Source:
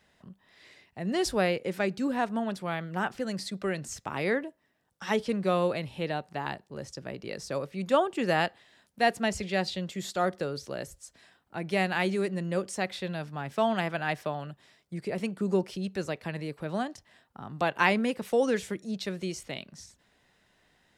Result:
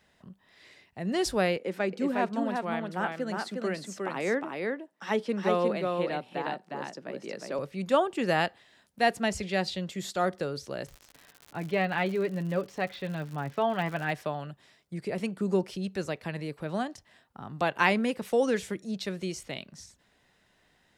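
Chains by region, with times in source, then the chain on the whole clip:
0:01.57–0:07.59: high-pass filter 190 Hz 24 dB per octave + high-shelf EQ 3,400 Hz −7 dB + single-tap delay 359 ms −3.5 dB
0:10.85–0:14.10: high-frequency loss of the air 210 metres + comb filter 7 ms, depth 44% + surface crackle 130 per second −37 dBFS
whole clip: no processing

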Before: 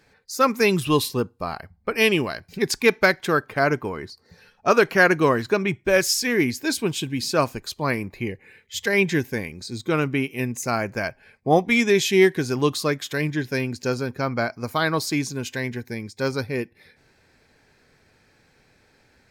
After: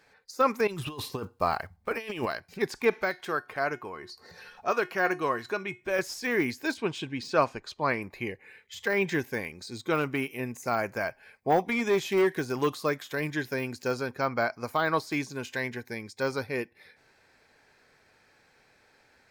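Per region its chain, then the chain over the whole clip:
0:00.67–0:02.26: one scale factor per block 7 bits + parametric band 92 Hz +5 dB 0.72 octaves + compressor whose output falls as the input rises −25 dBFS, ratio −0.5
0:02.93–0:05.99: upward compression, threshold −25 dBFS + tuned comb filter 360 Hz, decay 0.25 s
0:06.74–0:08.02: high-frequency loss of the air 82 metres + one half of a high-frequency compander decoder only
0:09.94–0:13.91: high-shelf EQ 10,000 Hz +9 dB + gain into a clipping stage and back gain 12.5 dB
whole clip: low-shelf EQ 480 Hz −7.5 dB; de-essing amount 85%; parametric band 830 Hz +5 dB 2.6 octaves; level −3.5 dB

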